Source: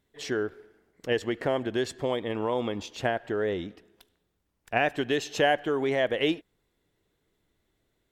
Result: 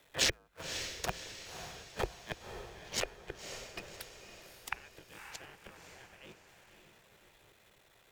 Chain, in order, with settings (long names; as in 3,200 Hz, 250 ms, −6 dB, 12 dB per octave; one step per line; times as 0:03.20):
sub-harmonics by changed cycles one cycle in 3, muted
gate with flip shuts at −27 dBFS, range −40 dB
hollow resonant body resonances 290/2,500 Hz, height 11 dB, ringing for 35 ms
gate on every frequency bin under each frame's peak −10 dB weak
frequency shifter −52 Hz
on a send: feedback delay with all-pass diffusion 555 ms, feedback 50%, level −8 dB
on the sum: level +14 dB